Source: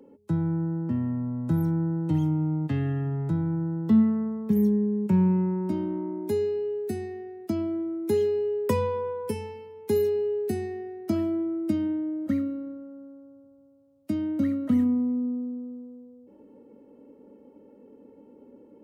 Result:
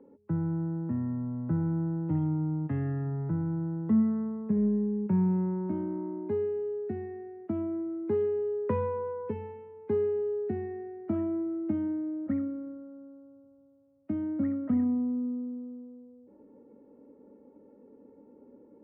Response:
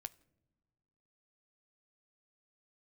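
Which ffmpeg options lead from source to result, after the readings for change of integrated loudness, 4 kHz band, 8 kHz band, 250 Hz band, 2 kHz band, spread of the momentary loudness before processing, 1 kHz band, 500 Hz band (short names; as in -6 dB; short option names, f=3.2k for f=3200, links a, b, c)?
-4.0 dB, under -20 dB, under -25 dB, -4.0 dB, -7.0 dB, 12 LU, -4.0 dB, -4.0 dB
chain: -filter_complex "[0:a]lowpass=f=1.9k:w=0.5412,lowpass=f=1.9k:w=1.3066,asplit=2[a][b];[b]asoftclip=type=tanh:threshold=-19.5dB,volume=-6dB[c];[a][c]amix=inputs=2:normalize=0,volume=-7dB"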